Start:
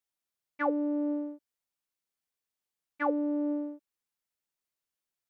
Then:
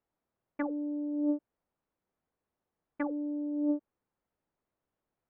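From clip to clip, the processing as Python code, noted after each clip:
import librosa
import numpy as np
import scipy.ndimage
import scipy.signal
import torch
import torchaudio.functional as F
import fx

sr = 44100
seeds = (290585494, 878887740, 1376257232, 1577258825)

y = fx.env_lowpass_down(x, sr, base_hz=500.0, full_db=-29.5)
y = scipy.signal.sosfilt(scipy.signal.bessel(2, 750.0, 'lowpass', norm='mag', fs=sr, output='sos'), y)
y = fx.over_compress(y, sr, threshold_db=-40.0, ratio=-1.0)
y = y * librosa.db_to_amplitude(7.5)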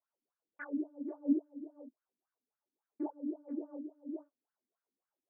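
y = x + 10.0 ** (-8.0 / 20.0) * np.pad(x, (int(486 * sr / 1000.0), 0))[:len(x)]
y = fx.wah_lfo(y, sr, hz=3.6, low_hz=240.0, high_hz=1600.0, q=8.6)
y = fx.detune_double(y, sr, cents=50)
y = y * librosa.db_to_amplitude(8.0)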